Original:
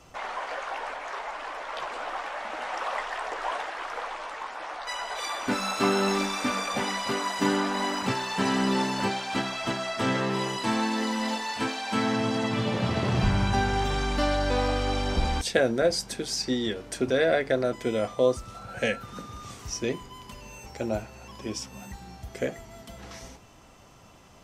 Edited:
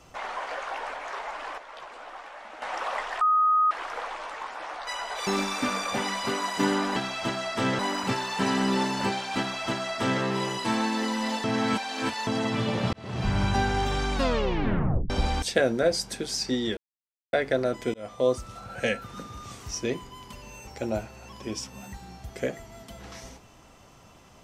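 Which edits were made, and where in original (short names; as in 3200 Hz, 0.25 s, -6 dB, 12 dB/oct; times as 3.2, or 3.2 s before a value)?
1.58–2.62 gain -8.5 dB
3.21–3.71 bleep 1250 Hz -18 dBFS
5.27–6.09 cut
9.38–10.21 copy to 7.78
11.43–12.26 reverse
12.92–13.41 fade in
14.13 tape stop 0.96 s
16.76–17.32 mute
17.93–18.4 fade in equal-power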